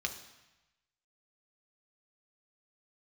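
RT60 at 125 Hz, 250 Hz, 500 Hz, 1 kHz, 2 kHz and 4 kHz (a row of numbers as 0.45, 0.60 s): 1.2, 1.0, 0.95, 1.1, 1.1, 1.0 s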